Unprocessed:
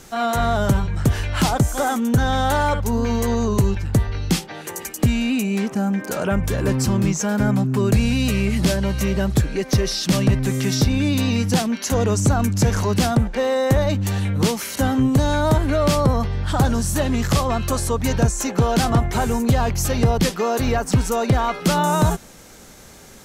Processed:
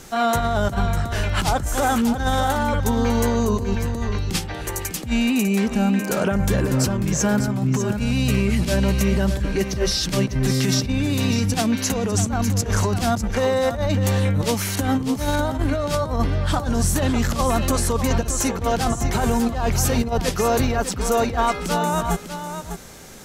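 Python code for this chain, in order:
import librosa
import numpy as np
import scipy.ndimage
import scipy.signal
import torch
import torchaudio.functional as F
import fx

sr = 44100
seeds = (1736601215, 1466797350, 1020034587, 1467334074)

p1 = fx.over_compress(x, sr, threshold_db=-20.0, ratio=-0.5)
y = p1 + fx.echo_single(p1, sr, ms=600, db=-9.0, dry=0)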